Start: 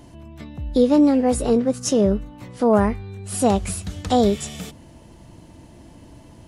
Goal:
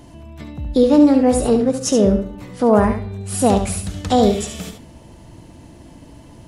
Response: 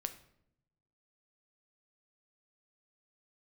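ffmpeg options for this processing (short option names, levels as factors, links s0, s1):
-filter_complex "[0:a]asplit=2[s0][s1];[1:a]atrim=start_sample=2205,adelay=71[s2];[s1][s2]afir=irnorm=-1:irlink=0,volume=0.501[s3];[s0][s3]amix=inputs=2:normalize=0,volume=1.33"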